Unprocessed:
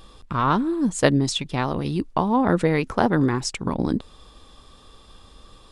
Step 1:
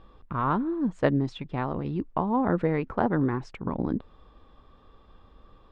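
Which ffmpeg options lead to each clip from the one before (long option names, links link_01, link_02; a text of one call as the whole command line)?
ffmpeg -i in.wav -af "lowpass=1800,volume=-5dB" out.wav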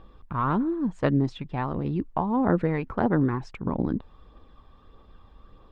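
ffmpeg -i in.wav -af "aphaser=in_gain=1:out_gain=1:delay=1.3:decay=0.31:speed=1.6:type=triangular" out.wav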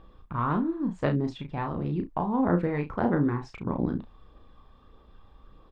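ffmpeg -i in.wav -af "aecho=1:1:34|67:0.531|0.133,volume=-3dB" out.wav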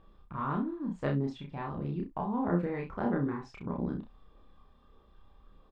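ffmpeg -i in.wav -filter_complex "[0:a]asplit=2[link_01][link_02];[link_02]adelay=29,volume=-3dB[link_03];[link_01][link_03]amix=inputs=2:normalize=0,volume=-7.5dB" out.wav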